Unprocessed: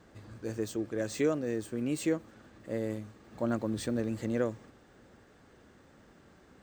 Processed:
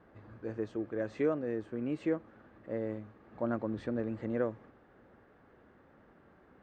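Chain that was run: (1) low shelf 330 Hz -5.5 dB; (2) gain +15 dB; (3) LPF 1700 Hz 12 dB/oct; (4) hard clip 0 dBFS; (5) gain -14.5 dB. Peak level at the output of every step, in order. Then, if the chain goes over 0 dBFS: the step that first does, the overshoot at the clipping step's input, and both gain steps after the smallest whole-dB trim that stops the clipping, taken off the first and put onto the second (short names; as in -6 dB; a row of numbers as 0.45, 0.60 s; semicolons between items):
-18.5, -3.5, -4.0, -4.0, -18.5 dBFS; no overload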